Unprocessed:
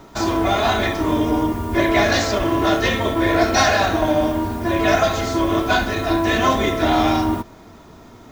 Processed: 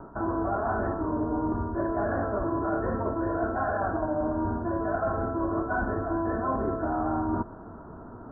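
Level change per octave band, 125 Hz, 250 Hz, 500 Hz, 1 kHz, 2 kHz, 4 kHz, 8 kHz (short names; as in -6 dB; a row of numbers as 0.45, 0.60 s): -8.5 dB, -9.5 dB, -9.5 dB, -10.0 dB, -15.0 dB, under -40 dB, under -40 dB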